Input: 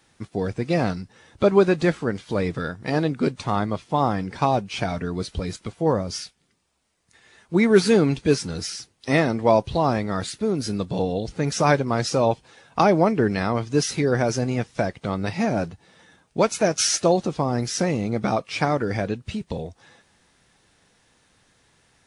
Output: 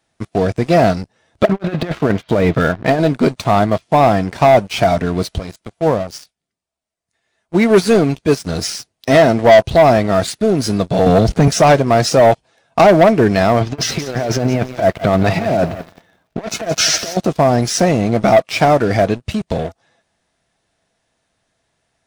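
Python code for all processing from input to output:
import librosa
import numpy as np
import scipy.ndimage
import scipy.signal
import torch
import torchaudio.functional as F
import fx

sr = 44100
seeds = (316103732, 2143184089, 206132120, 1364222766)

y = fx.chain(x, sr, fx.lowpass(hz=3800.0, slope=24),
    fx.over_compress(threshold_db=-24.0, ratio=-0.5), at=(1.45, 3.0))
y = fx.chain(y, sr, fx.high_shelf(hz=7300.0, db=2.5),
    fx.upward_expand(threshold_db=-26.0, expansion=1.5), at=(5.38, 8.47))
y = fx.chain(y, sr, fx.low_shelf(hz=320.0, db=6.5),
    fx.leveller(passes=1),
    fx.band_squash(depth_pct=40), at=(11.06, 11.48))
y = fx.chain(y, sr, fx.lowpass(hz=4100.0, slope=12),
    fx.over_compress(threshold_db=-26.0, ratio=-0.5),
    fx.echo_crushed(ms=173, feedback_pct=35, bits=8, wet_db=-12.0), at=(13.61, 17.17))
y = fx.peak_eq(y, sr, hz=660.0, db=12.0, octaves=0.23)
y = fx.leveller(y, sr, passes=3)
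y = y * 10.0 ** (-2.0 / 20.0)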